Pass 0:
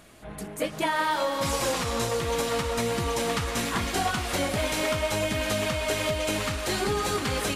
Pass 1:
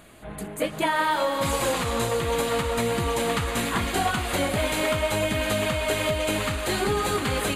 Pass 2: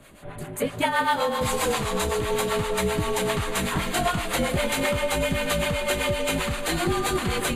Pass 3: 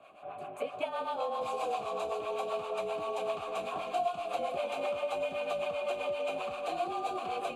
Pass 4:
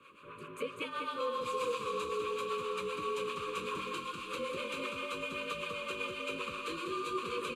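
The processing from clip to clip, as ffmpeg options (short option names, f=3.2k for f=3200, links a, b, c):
-af "equalizer=f=5.5k:t=o:w=0.3:g=-13.5,volume=2.5dB"
-filter_complex "[0:a]acrossover=split=590[a][b];[a]aeval=exprs='val(0)*(1-0.7/2+0.7/2*cos(2*PI*7.7*n/s))':c=same[c];[b]aeval=exprs='val(0)*(1-0.7/2-0.7/2*cos(2*PI*7.7*n/s))':c=same[d];[c][d]amix=inputs=2:normalize=0,afreqshift=-42,volume=3.5dB"
-filter_complex "[0:a]asplit=3[a][b][c];[a]bandpass=f=730:t=q:w=8,volume=0dB[d];[b]bandpass=f=1.09k:t=q:w=8,volume=-6dB[e];[c]bandpass=f=2.44k:t=q:w=8,volume=-9dB[f];[d][e][f]amix=inputs=3:normalize=0,acrossover=split=330|750|3500[g][h][i][j];[g]acompressor=threshold=-58dB:ratio=4[k];[h]acompressor=threshold=-40dB:ratio=4[l];[i]acompressor=threshold=-52dB:ratio=4[m];[j]acompressor=threshold=-55dB:ratio=4[n];[k][l][m][n]amix=inputs=4:normalize=0,volume=7.5dB"
-filter_complex "[0:a]asuperstop=centerf=720:order=8:qfactor=1.5,asplit=2[a][b];[b]aecho=0:1:195:0.422[c];[a][c]amix=inputs=2:normalize=0,volume=2.5dB"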